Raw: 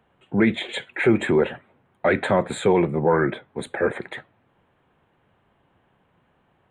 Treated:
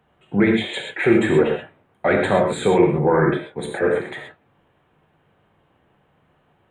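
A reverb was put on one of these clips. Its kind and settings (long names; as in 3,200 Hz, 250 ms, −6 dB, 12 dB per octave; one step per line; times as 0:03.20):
reverb whose tail is shaped and stops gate 150 ms flat, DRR 1 dB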